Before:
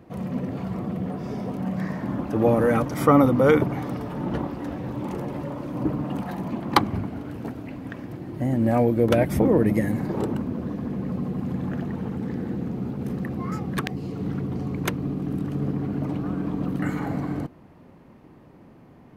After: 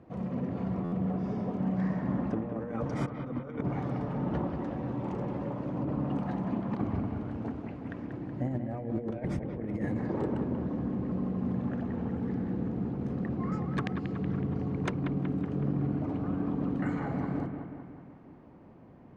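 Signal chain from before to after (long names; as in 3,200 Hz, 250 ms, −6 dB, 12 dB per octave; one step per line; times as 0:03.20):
low-pass filter 7,800 Hz 24 dB per octave
high-shelf EQ 2,400 Hz −11 dB
mains-hum notches 50/100/150/200/250/300/350/400/450 Hz
compressor whose output falls as the input rises −25 dBFS, ratio −0.5
on a send: bucket-brigade delay 186 ms, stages 4,096, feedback 59%, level −7.5 dB
on the sum: buffer that repeats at 0:00.84, samples 512, times 6
level −5.5 dB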